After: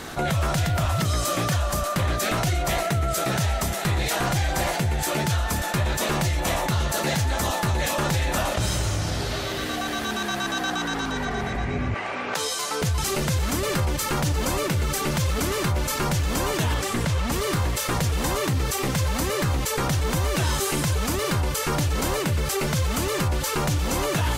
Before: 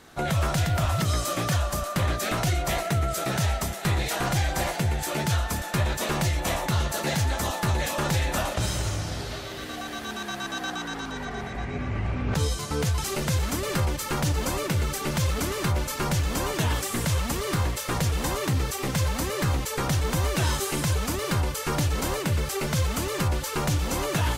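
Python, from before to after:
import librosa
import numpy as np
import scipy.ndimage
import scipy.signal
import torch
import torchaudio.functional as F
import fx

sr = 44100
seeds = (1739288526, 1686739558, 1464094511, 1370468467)

y = fx.highpass(x, sr, hz=550.0, slope=12, at=(11.94, 12.82))
y = fx.high_shelf(y, sr, hz=7300.0, db=-11.5, at=(16.74, 17.32))
y = fx.env_flatten(y, sr, amount_pct=50)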